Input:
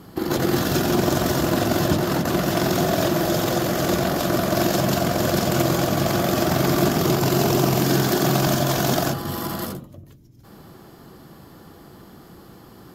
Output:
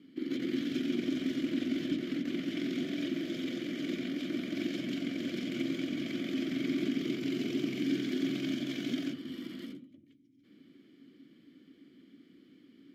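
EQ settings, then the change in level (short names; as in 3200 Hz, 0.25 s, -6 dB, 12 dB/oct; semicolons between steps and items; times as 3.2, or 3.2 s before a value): vowel filter i; low shelf 160 Hz -7 dB; 0.0 dB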